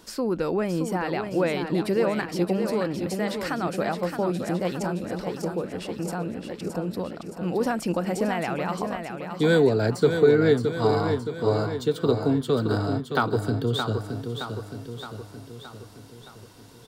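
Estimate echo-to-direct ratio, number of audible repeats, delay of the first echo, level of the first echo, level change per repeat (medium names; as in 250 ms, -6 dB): -5.5 dB, 6, 619 ms, -7.0 dB, -5.0 dB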